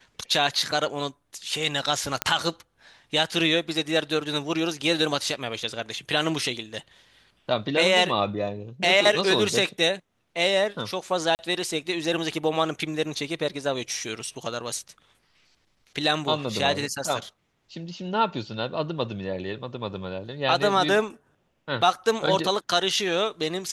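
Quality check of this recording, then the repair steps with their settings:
2.22 pop -6 dBFS
11.35–11.39 gap 39 ms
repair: de-click; interpolate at 11.35, 39 ms

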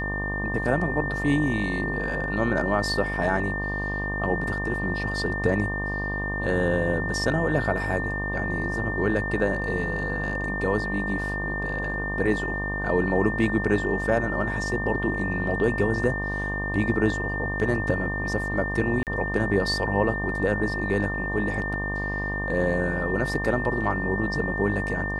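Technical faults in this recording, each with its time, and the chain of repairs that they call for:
buzz 50 Hz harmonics 24 -31 dBFS
tone 1800 Hz -29 dBFS
19.03–19.07 gap 38 ms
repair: de-hum 50 Hz, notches 24; notch 1800 Hz, Q 30; interpolate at 19.03, 38 ms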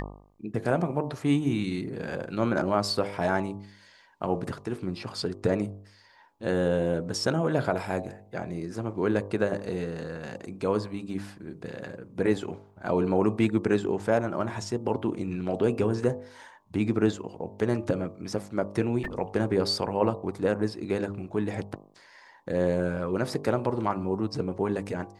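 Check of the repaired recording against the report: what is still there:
none

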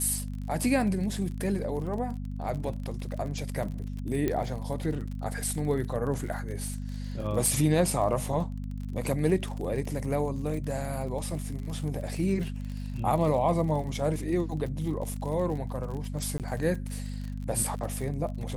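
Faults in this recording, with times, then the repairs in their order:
crackle 44/s -35 dBFS
hum 50 Hz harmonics 5 -35 dBFS
4.28 pop -15 dBFS
7.46 pop
16.38–16.4 gap 18 ms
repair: de-click; de-hum 50 Hz, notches 5; interpolate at 16.38, 18 ms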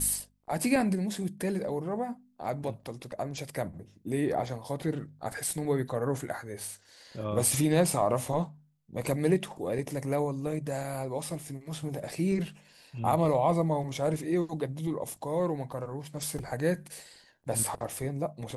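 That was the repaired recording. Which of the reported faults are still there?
none

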